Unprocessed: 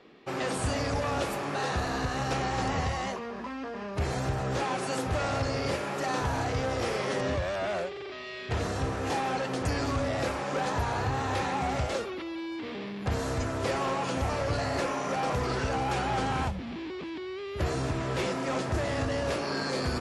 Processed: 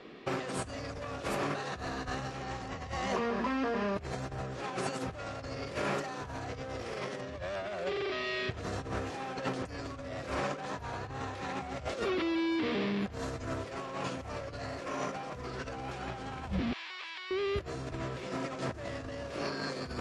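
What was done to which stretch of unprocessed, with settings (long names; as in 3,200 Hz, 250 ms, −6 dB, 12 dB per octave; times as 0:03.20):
0:16.73–0:17.31: Bessel high-pass filter 1,300 Hz, order 4
whole clip: Bessel low-pass filter 8,200 Hz, order 2; notch filter 850 Hz, Q 12; compressor whose output falls as the input rises −35 dBFS, ratio −0.5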